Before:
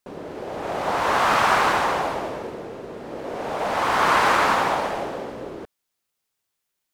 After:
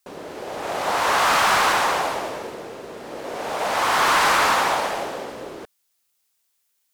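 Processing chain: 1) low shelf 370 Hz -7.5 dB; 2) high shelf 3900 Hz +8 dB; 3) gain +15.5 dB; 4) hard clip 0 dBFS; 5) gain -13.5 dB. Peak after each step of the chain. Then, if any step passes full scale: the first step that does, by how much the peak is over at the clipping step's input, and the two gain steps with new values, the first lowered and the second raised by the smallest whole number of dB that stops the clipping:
-8.0, -6.5, +9.0, 0.0, -13.5 dBFS; step 3, 9.0 dB; step 3 +6.5 dB, step 5 -4.5 dB

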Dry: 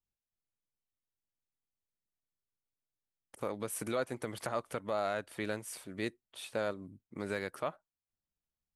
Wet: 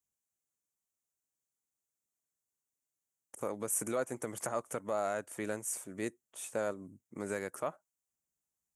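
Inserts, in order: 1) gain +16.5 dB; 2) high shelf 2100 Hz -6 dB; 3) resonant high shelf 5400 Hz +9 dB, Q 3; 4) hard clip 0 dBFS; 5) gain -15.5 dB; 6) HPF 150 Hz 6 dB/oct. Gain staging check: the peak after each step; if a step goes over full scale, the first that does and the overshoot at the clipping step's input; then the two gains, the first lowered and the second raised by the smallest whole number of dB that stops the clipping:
-4.0, -5.0, -4.0, -4.0, -19.5, -19.5 dBFS; no overload

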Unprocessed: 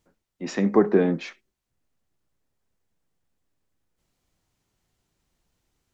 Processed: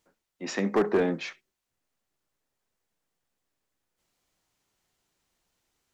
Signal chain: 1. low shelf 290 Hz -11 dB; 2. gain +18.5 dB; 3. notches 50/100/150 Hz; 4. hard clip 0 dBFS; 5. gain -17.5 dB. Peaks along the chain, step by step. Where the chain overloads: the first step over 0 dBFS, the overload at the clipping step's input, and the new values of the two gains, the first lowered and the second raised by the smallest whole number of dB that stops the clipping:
-9.5, +9.0, +9.0, 0.0, -17.5 dBFS; step 2, 9.0 dB; step 2 +9.5 dB, step 5 -8.5 dB

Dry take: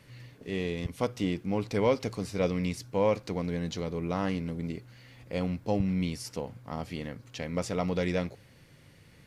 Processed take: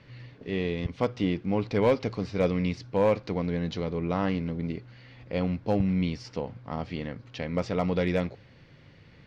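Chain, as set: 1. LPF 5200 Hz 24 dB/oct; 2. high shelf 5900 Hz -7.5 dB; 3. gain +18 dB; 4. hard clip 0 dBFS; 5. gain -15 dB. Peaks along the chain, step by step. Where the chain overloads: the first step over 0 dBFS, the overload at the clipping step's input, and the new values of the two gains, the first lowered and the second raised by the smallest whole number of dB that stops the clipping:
-13.5, -13.5, +4.5, 0.0, -15.0 dBFS; step 3, 4.5 dB; step 3 +13 dB, step 5 -10 dB

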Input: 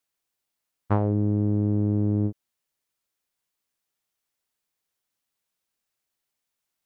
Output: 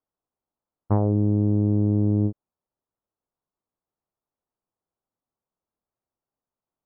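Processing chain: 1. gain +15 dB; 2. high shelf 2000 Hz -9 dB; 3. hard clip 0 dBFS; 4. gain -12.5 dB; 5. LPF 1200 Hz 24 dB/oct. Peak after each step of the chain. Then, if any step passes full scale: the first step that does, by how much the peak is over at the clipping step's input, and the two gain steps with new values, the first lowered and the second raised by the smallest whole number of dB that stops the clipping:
+5.5, +4.5, 0.0, -12.5, -11.0 dBFS; step 1, 4.5 dB; step 1 +10 dB, step 4 -7.5 dB

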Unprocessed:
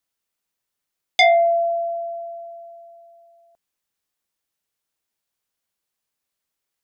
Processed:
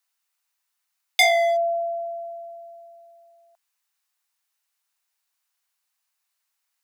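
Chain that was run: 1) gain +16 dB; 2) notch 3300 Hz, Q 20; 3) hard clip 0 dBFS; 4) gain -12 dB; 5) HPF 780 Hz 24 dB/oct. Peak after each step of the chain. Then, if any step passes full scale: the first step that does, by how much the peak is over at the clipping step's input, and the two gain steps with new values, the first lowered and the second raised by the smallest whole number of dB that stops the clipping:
+7.5, +9.0, 0.0, -12.0, -5.0 dBFS; step 1, 9.0 dB; step 1 +7 dB, step 4 -3 dB

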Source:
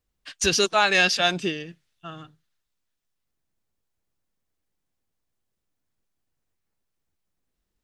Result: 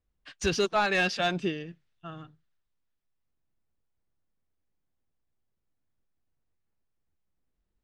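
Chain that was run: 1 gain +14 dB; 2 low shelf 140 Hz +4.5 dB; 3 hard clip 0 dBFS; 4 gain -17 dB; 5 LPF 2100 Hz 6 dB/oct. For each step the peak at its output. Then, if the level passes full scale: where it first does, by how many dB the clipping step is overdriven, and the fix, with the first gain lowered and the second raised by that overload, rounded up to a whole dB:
+9.0, +9.0, 0.0, -17.0, -17.0 dBFS; step 1, 9.0 dB; step 1 +5 dB, step 4 -8 dB

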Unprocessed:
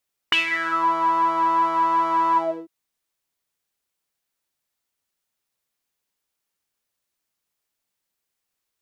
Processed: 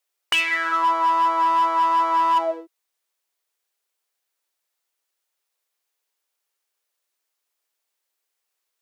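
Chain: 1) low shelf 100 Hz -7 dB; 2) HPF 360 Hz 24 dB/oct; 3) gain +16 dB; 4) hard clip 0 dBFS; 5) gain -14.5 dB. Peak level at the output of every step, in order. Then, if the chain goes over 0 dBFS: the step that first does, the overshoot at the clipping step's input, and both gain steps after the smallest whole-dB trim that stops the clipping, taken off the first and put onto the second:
-8.0, -7.5, +8.5, 0.0, -14.5 dBFS; step 3, 8.5 dB; step 3 +7 dB, step 5 -5.5 dB

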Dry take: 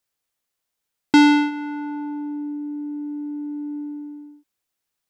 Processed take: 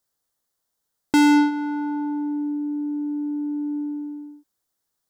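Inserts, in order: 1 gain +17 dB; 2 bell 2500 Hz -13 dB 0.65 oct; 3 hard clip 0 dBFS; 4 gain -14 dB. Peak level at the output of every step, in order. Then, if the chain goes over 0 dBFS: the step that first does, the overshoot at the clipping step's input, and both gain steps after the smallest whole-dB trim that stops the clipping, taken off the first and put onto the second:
+9.5, +9.0, 0.0, -14.0 dBFS; step 1, 9.0 dB; step 1 +8 dB, step 4 -5 dB

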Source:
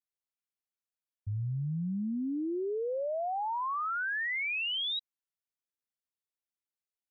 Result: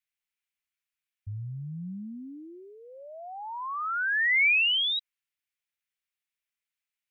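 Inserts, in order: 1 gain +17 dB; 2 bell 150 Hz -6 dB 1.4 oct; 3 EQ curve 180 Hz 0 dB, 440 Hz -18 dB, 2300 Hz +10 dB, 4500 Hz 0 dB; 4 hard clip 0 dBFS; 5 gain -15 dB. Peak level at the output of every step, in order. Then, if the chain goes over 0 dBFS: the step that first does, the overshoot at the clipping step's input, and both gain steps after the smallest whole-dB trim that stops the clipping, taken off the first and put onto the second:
-13.0, -13.0, -3.0, -3.0, -18.0 dBFS; no overload

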